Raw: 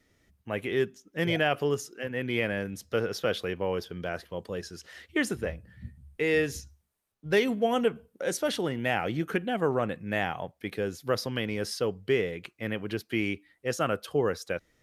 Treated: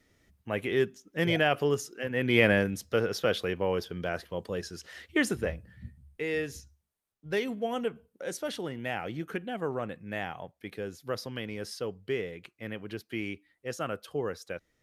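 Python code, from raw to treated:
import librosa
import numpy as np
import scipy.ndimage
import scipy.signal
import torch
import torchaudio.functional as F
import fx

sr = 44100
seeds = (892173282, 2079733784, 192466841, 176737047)

y = fx.gain(x, sr, db=fx.line((2.04, 0.5), (2.51, 8.0), (2.89, 1.0), (5.54, 1.0), (6.28, -6.0)))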